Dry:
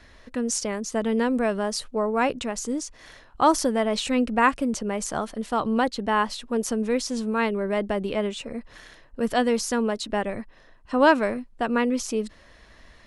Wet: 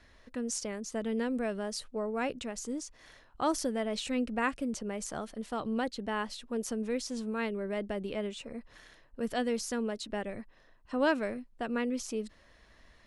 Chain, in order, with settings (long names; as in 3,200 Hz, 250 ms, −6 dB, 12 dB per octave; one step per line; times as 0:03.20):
dynamic equaliser 1,000 Hz, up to −6 dB, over −39 dBFS, Q 1.9
level −8.5 dB